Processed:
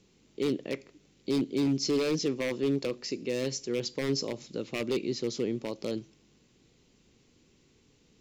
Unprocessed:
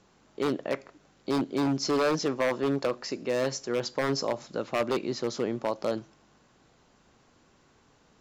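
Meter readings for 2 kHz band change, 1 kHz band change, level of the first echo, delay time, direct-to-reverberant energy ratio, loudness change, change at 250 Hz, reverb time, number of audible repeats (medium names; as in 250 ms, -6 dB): -5.0 dB, -13.0 dB, no echo, no echo, no reverb, -2.0 dB, 0.0 dB, no reverb, no echo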